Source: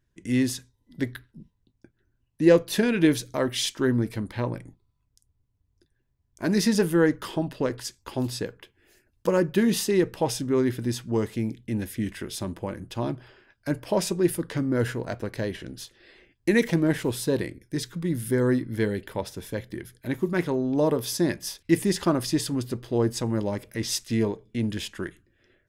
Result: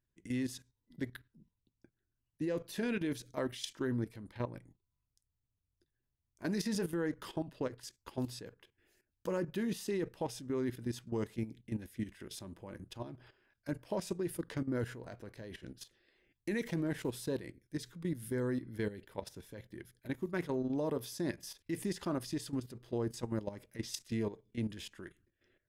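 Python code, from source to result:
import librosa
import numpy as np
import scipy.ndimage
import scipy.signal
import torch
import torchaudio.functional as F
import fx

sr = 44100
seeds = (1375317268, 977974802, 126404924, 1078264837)

y = fx.level_steps(x, sr, step_db=13)
y = y * librosa.db_to_amplitude(-7.5)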